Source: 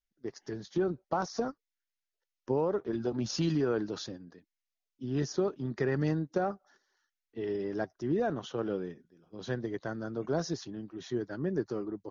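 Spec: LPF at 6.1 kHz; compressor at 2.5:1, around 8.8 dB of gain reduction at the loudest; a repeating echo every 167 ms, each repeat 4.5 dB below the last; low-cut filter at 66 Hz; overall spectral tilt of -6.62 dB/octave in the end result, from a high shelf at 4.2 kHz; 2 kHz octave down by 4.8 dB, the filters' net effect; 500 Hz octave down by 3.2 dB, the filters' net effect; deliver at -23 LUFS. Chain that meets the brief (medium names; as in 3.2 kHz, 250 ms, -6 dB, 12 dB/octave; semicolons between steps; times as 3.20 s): high-pass 66 Hz; low-pass 6.1 kHz; peaking EQ 500 Hz -4 dB; peaking EQ 2 kHz -5 dB; treble shelf 4.2 kHz -7 dB; compression 2.5:1, threshold -40 dBFS; feedback delay 167 ms, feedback 60%, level -4.5 dB; trim +18.5 dB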